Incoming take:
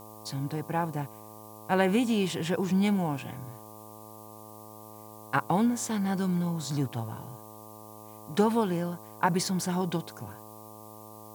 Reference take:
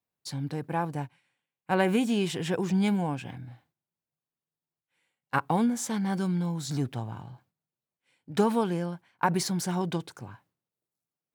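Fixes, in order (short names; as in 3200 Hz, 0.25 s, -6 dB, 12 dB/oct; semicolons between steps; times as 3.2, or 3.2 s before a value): de-hum 107.6 Hz, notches 11; denoiser 30 dB, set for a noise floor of -47 dBFS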